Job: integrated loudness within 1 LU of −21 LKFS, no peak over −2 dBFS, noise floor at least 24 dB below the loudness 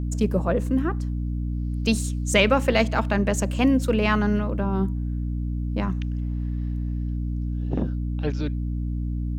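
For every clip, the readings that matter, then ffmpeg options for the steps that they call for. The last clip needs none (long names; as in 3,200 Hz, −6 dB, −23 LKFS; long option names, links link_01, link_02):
mains hum 60 Hz; hum harmonics up to 300 Hz; level of the hum −24 dBFS; integrated loudness −25.0 LKFS; sample peak −3.5 dBFS; target loudness −21.0 LKFS
→ -af "bandreject=frequency=60:width_type=h:width=6,bandreject=frequency=120:width_type=h:width=6,bandreject=frequency=180:width_type=h:width=6,bandreject=frequency=240:width_type=h:width=6,bandreject=frequency=300:width_type=h:width=6"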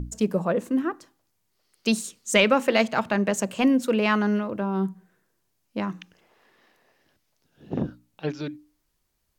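mains hum none found; integrated loudness −25.0 LKFS; sample peak −5.0 dBFS; target loudness −21.0 LKFS
→ -af "volume=4dB,alimiter=limit=-2dB:level=0:latency=1"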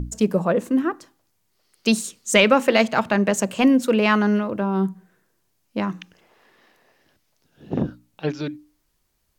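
integrated loudness −21.0 LKFS; sample peak −2.0 dBFS; background noise floor −69 dBFS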